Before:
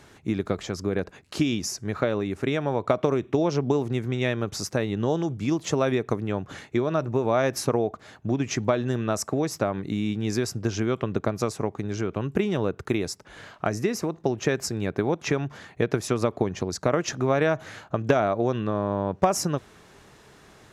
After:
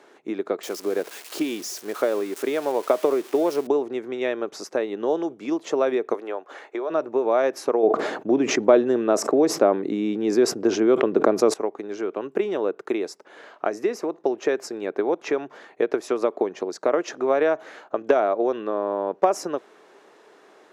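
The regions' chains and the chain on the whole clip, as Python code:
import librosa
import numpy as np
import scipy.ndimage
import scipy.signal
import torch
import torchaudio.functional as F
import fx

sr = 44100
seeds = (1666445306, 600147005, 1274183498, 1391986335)

y = fx.chain(x, sr, fx.crossing_spikes(level_db=-22.0),
    fx.highpass(hz=87.0, slope=12), at=(0.63, 3.67))
y = fx.chain(y, sr, fx.highpass(hz=660.0, slope=12),
    fx.tilt_shelf(db=4.5, hz=1100.0),
    fx.band_squash(depth_pct=70), at=(6.14, 6.9))
y = fx.chain(y, sr, fx.low_shelf(hz=500.0, db=10.0),
    fx.sustainer(db_per_s=42.0), at=(7.83, 11.54))
y = scipy.signal.sosfilt(scipy.signal.butter(4, 360.0, 'highpass', fs=sr, output='sos'), y)
y = fx.tilt_eq(y, sr, slope=-3.0)
y = y * librosa.db_to_amplitude(1.0)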